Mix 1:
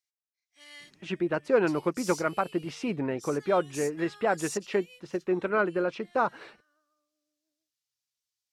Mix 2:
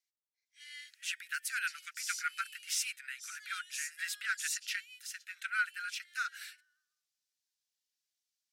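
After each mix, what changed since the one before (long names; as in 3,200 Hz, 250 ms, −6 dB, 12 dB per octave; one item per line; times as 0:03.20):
speech: remove low-pass filter 3,000 Hz 12 dB per octave
master: add Butterworth high-pass 1,400 Hz 96 dB per octave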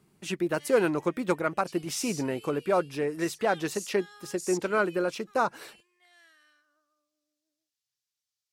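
speech: entry −0.80 s
master: remove Butterworth high-pass 1,400 Hz 96 dB per octave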